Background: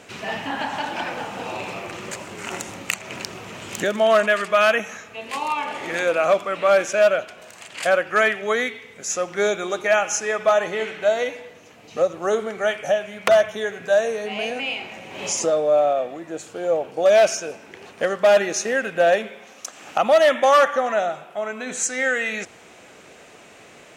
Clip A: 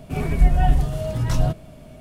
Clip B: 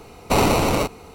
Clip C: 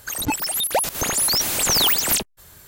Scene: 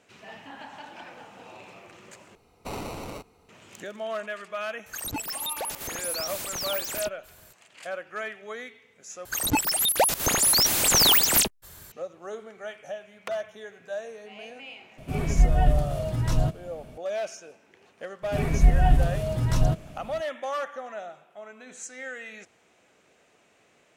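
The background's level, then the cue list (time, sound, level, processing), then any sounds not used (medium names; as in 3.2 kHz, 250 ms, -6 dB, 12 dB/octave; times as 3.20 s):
background -16 dB
2.35 s: replace with B -18 dB
4.86 s: add C -7 dB + peak limiter -19.5 dBFS
9.25 s: replace with C -0.5 dB
14.98 s: add A -3.5 dB
18.22 s: add A -2 dB, fades 0.02 s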